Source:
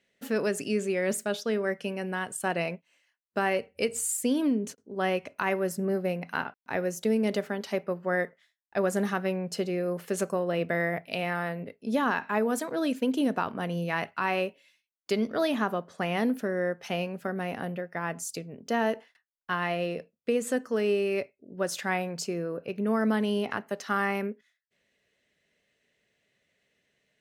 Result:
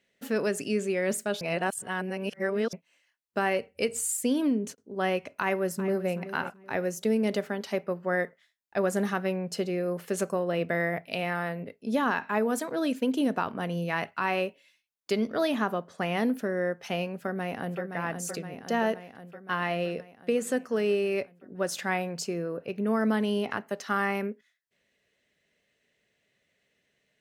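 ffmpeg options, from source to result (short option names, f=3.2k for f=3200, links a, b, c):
-filter_complex "[0:a]asplit=2[a][b];[b]afade=t=in:st=5.4:d=0.01,afade=t=out:st=6.11:d=0.01,aecho=0:1:380|760|1140:0.223872|0.055968|0.013992[c];[a][c]amix=inputs=2:normalize=0,asplit=2[d][e];[e]afade=t=in:st=17.15:d=0.01,afade=t=out:st=17.82:d=0.01,aecho=0:1:520|1040|1560|2080|2600|3120|3640|4160|4680|5200|5720:0.446684|0.312679|0.218875|0.153212|0.107249|0.0750741|0.0525519|0.0367863|0.0257504|0.0180253|0.0126177[f];[d][f]amix=inputs=2:normalize=0,asplit=3[g][h][i];[g]atrim=end=1.412[j];[h]atrim=start=1.408:end=2.732,asetpts=PTS-STARTPTS,areverse[k];[i]atrim=start=2.728[l];[j][k]acrossfade=d=0.004:c1=hsin:c2=hsin[m];[m][l]acrossfade=d=0.004:c1=hsin:c2=hsin"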